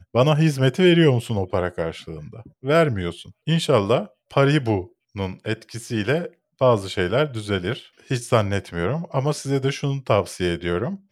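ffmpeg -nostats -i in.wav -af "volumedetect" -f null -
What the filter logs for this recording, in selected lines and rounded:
mean_volume: -21.7 dB
max_volume: -3.1 dB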